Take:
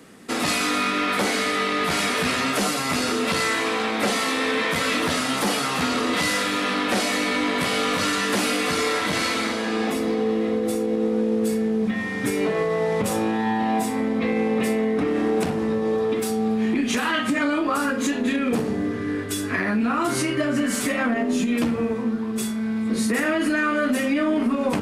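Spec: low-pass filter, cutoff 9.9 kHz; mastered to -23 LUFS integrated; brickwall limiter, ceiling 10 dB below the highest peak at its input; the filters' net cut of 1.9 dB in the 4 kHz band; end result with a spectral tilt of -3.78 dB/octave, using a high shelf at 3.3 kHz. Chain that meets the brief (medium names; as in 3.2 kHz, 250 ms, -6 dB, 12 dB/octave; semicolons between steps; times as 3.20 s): low-pass 9.9 kHz; treble shelf 3.3 kHz +5 dB; peaking EQ 4 kHz -6 dB; trim +5.5 dB; peak limiter -15.5 dBFS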